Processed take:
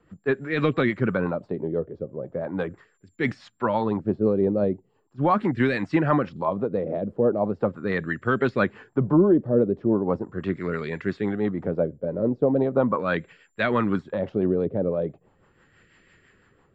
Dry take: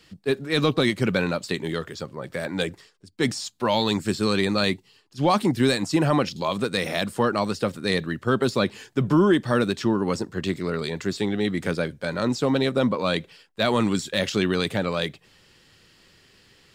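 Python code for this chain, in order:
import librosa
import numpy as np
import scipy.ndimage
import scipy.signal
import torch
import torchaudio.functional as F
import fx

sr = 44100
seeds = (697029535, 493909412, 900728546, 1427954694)

y = x + 10.0 ** (-46.0 / 20.0) * np.sin(2.0 * np.pi * 7300.0 * np.arange(len(x)) / sr)
y = fx.filter_lfo_lowpass(y, sr, shape='sine', hz=0.39, low_hz=520.0, high_hz=2000.0, q=2.0)
y = fx.rotary(y, sr, hz=6.0)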